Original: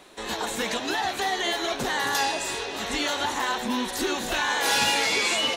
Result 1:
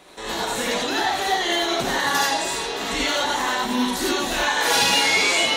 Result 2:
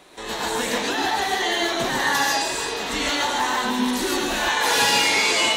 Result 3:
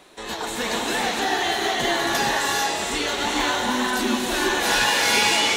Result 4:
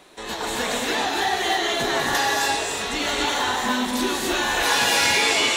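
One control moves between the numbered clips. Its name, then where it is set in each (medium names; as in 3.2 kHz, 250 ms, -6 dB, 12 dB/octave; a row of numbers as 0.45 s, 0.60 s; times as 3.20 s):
gated-style reverb, gate: 110 ms, 170 ms, 490 ms, 310 ms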